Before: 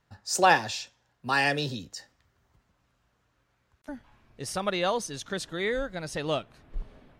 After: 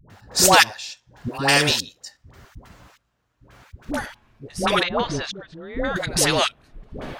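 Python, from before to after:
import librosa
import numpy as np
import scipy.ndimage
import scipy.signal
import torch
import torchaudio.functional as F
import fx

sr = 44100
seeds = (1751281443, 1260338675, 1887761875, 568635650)

p1 = fx.level_steps(x, sr, step_db=21)
p2 = x + F.gain(torch.from_numpy(p1), 2.0).numpy()
p3 = fx.step_gate(p2, sr, bpm=141, pattern='x.xxx.....x', floor_db=-24.0, edge_ms=4.5)
p4 = fx.dispersion(p3, sr, late='highs', ms=101.0, hz=580.0)
p5 = fx.spacing_loss(p4, sr, db_at_10k=38, at=(4.83, 5.96))
p6 = fx.spectral_comp(p5, sr, ratio=2.0)
y = F.gain(torch.from_numpy(p6), 2.0).numpy()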